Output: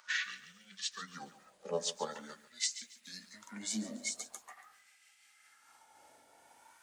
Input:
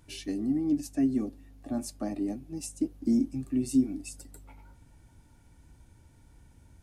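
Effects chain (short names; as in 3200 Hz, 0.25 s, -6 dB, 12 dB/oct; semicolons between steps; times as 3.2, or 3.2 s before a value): gliding pitch shift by -8 st ending unshifted; LFO high-pass sine 0.44 Hz 610–2300 Hz; lo-fi delay 0.141 s, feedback 35%, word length 11-bit, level -14 dB; gain +5.5 dB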